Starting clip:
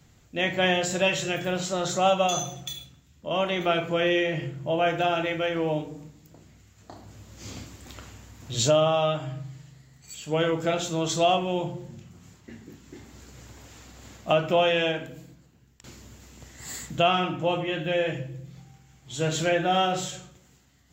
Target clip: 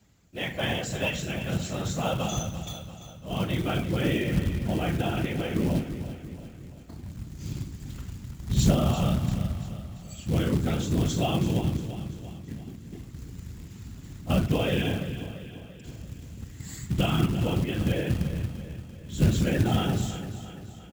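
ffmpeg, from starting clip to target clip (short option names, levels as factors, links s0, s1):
-filter_complex "[0:a]afftfilt=real='hypot(re,im)*cos(2*PI*random(0))':imag='hypot(re,im)*sin(2*PI*random(1))':win_size=512:overlap=0.75,asubboost=boost=8.5:cutoff=210,acrusher=bits=5:mode=log:mix=0:aa=0.000001,highpass=49,asplit=2[s0][s1];[s1]aecho=0:1:341|682|1023|1364|1705:0.251|0.131|0.0679|0.0353|0.0184[s2];[s0][s2]amix=inputs=2:normalize=0"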